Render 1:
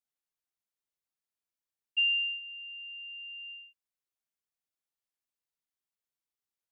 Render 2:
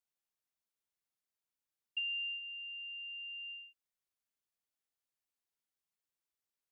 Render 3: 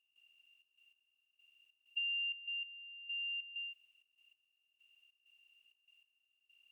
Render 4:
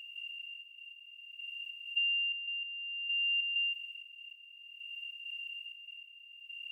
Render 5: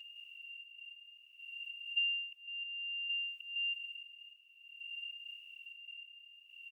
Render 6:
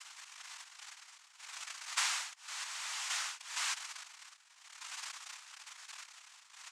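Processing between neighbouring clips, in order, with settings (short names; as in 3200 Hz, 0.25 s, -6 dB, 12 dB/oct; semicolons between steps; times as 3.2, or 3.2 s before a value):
compressor, threshold -35 dBFS, peak gain reduction 10 dB; gain -1.5 dB
per-bin compression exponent 0.4; step gate ".xxx.x...xx" 97 bpm -12 dB; gain -1.5 dB
per-bin compression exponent 0.4; tremolo 0.57 Hz, depth 57%; gain +6.5 dB
endless flanger 4.9 ms +0.96 Hz
noise vocoder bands 4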